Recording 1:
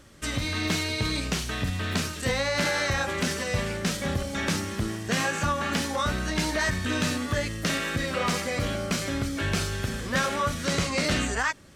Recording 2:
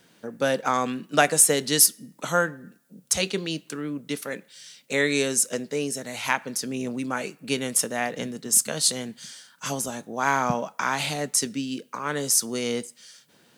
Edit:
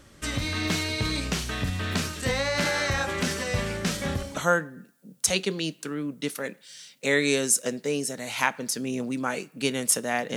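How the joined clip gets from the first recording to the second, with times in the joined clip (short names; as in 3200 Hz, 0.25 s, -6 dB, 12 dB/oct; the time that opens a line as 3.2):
recording 1
4.23 switch to recording 2 from 2.1 s, crossfade 0.48 s equal-power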